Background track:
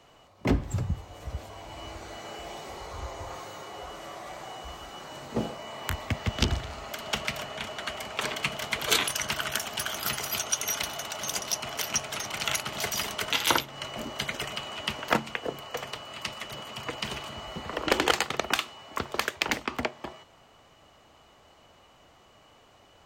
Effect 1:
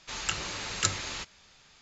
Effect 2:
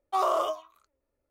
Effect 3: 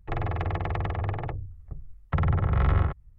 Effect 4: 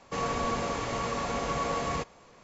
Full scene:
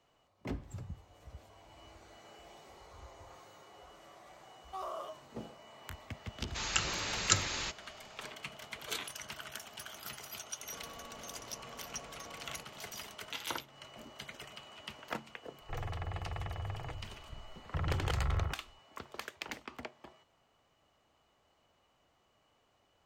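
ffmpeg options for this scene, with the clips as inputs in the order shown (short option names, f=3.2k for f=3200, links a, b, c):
-filter_complex "[0:a]volume=-15dB[a];[4:a]acompressor=threshold=-44dB:ratio=6:attack=3.2:release=140:knee=1:detection=peak[b];[3:a]equalizer=f=290:t=o:w=1.3:g=-7.5[c];[2:a]atrim=end=1.3,asetpts=PTS-STARTPTS,volume=-16dB,afade=t=in:d=0.004:c=hsin,afade=t=out:st=1.296:d=0.004:c=hsin,adelay=4600[d];[1:a]atrim=end=1.81,asetpts=PTS-STARTPTS,volume=-0.5dB,afade=t=in:d=0.004:c=hsin,afade=t=out:st=1.806:d=0.004:c=hsin,adelay=6470[e];[b]atrim=end=2.43,asetpts=PTS-STARTPTS,volume=-5.5dB,afade=t=in:d=0.004:c=hsin,afade=t=out:st=2.426:d=0.004:c=hsin,adelay=10610[f];[c]atrim=end=3.18,asetpts=PTS-STARTPTS,volume=-10dB,afade=t=in:d=0.004:c=hsin,afade=t=out:st=3.176:d=0.004:c=hsin,adelay=15610[g];[a][d][e][f][g]amix=inputs=5:normalize=0"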